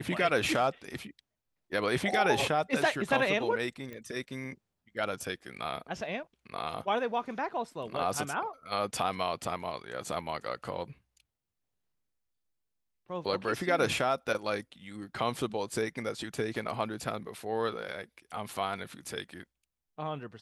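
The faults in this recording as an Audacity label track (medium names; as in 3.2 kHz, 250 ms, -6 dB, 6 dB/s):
3.930000	3.930000	pop -29 dBFS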